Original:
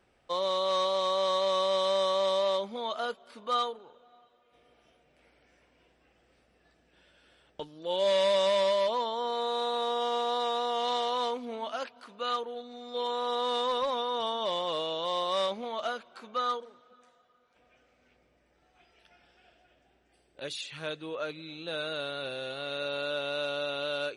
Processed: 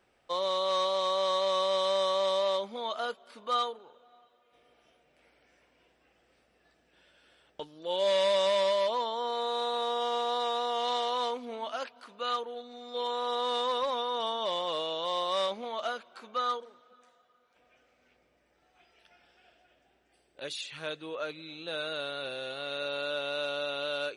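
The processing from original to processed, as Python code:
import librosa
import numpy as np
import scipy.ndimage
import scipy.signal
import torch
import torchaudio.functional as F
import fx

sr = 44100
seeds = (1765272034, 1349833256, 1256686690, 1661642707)

y = fx.low_shelf(x, sr, hz=230.0, db=-6.5)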